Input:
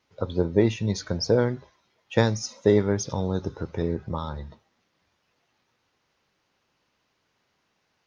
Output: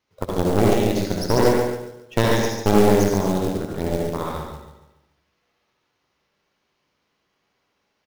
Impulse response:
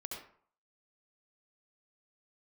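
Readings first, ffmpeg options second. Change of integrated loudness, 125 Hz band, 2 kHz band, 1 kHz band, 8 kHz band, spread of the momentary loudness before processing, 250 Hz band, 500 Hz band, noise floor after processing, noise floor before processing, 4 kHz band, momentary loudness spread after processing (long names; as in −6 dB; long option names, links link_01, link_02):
+5.0 dB, +3.0 dB, +6.0 dB, +11.0 dB, can't be measured, 11 LU, +5.5 dB, +4.5 dB, −73 dBFS, −74 dBFS, +4.5 dB, 12 LU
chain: -filter_complex "[0:a]aecho=1:1:142|284|426|568|710:0.596|0.238|0.0953|0.0381|0.0152,aeval=exprs='0.631*(cos(1*acos(clip(val(0)/0.631,-1,1)))-cos(1*PI/2))+0.282*(cos(2*acos(clip(val(0)/0.631,-1,1)))-cos(2*PI/2))+0.0141*(cos(5*acos(clip(val(0)/0.631,-1,1)))-cos(5*PI/2))+0.178*(cos(6*acos(clip(val(0)/0.631,-1,1)))-cos(6*PI/2))+0.00501*(cos(7*acos(clip(val(0)/0.631,-1,1)))-cos(7*PI/2))':channel_layout=same[link_01];[1:a]atrim=start_sample=2205[link_02];[link_01][link_02]afir=irnorm=-1:irlink=0,acrusher=bits=4:mode=log:mix=0:aa=0.000001"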